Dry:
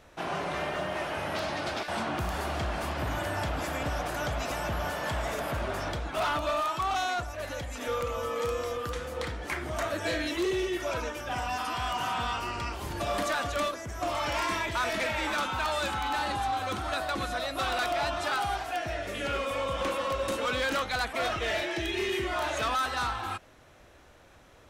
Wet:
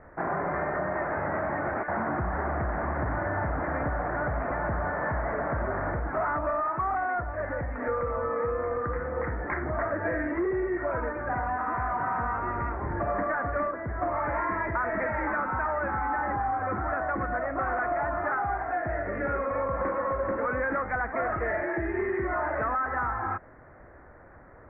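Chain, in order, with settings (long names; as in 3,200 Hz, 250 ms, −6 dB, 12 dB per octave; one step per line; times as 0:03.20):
Butterworth low-pass 2,000 Hz 72 dB per octave
downward compressor 5 to 1, threshold −31 dBFS, peak gain reduction 5.5 dB
level +5.5 dB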